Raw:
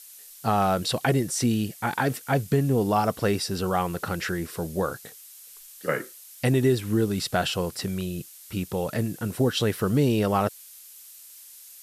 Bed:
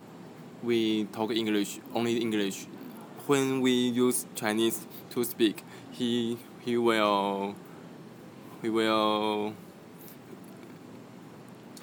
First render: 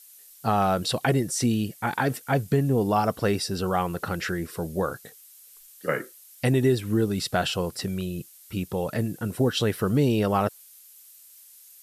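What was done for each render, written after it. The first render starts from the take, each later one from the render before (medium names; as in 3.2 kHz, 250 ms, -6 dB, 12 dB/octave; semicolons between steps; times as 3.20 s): noise reduction 6 dB, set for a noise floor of -47 dBFS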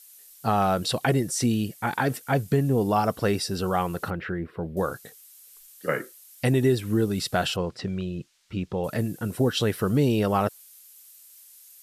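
4.10–4.77 s: distance through air 500 m; 7.56–8.84 s: distance through air 140 m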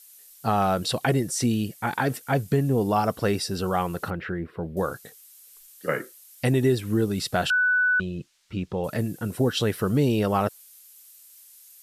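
7.50–8.00 s: bleep 1.49 kHz -18 dBFS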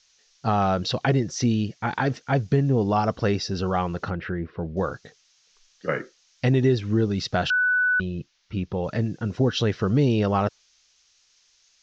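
steep low-pass 6.5 kHz 72 dB/octave; bass shelf 110 Hz +6.5 dB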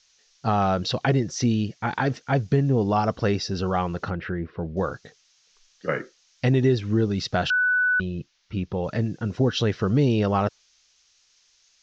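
no audible change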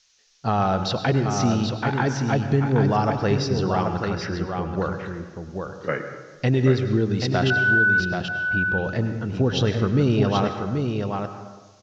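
on a send: delay 782 ms -5.5 dB; on the sum: plate-style reverb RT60 1.3 s, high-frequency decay 0.6×, pre-delay 85 ms, DRR 8.5 dB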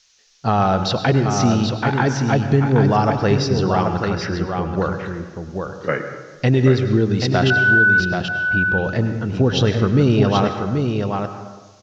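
trim +4.5 dB; peak limiter -3 dBFS, peak gain reduction 1.5 dB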